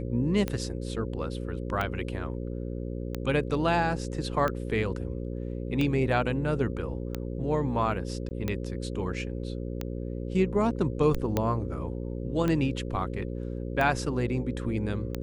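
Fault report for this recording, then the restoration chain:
mains buzz 60 Hz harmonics 9 −34 dBFS
scratch tick 45 rpm −16 dBFS
0:08.29–0:08.31: drop-out 19 ms
0:11.37: click −12 dBFS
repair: click removal
hum removal 60 Hz, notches 9
repair the gap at 0:08.29, 19 ms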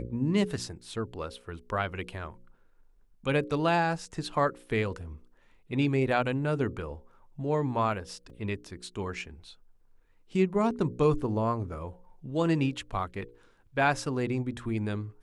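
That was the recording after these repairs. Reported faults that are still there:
none of them is left

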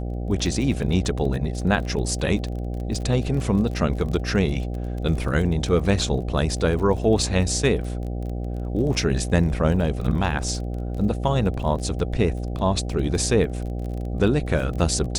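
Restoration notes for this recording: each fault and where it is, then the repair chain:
mains buzz 60 Hz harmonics 13 −28 dBFS
surface crackle 27 per second −31 dBFS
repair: click removal
hum removal 60 Hz, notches 13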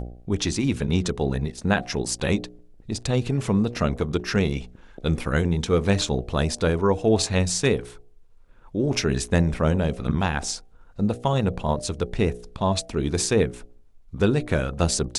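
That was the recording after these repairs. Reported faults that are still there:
none of them is left

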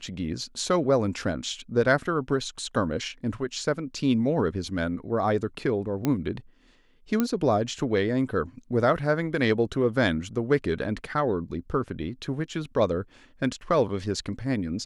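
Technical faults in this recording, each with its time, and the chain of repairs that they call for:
0:06.05: click −12 dBFS
0:07.20: click −11 dBFS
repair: click removal

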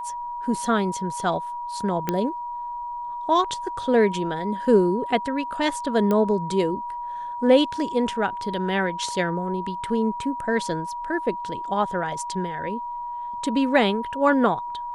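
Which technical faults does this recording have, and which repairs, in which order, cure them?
whistle 960 Hz −29 dBFS
0:02.09: click −9 dBFS
0:06.11: click −12 dBFS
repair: click removal
notch filter 960 Hz, Q 30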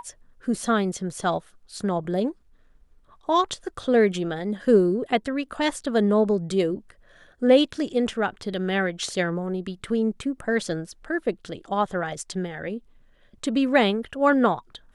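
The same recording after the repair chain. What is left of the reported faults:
none of them is left

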